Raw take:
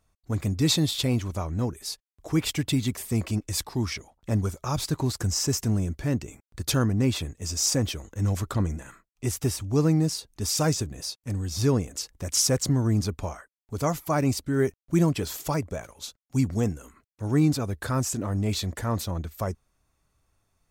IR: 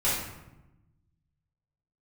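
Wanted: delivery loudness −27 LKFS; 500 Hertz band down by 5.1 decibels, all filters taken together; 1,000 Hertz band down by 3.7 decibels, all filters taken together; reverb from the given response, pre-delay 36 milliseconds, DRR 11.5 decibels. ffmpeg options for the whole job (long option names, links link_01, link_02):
-filter_complex "[0:a]equalizer=frequency=500:width_type=o:gain=-6,equalizer=frequency=1000:width_type=o:gain=-3,asplit=2[link_01][link_02];[1:a]atrim=start_sample=2205,adelay=36[link_03];[link_02][link_03]afir=irnorm=-1:irlink=0,volume=-23dB[link_04];[link_01][link_04]amix=inputs=2:normalize=0"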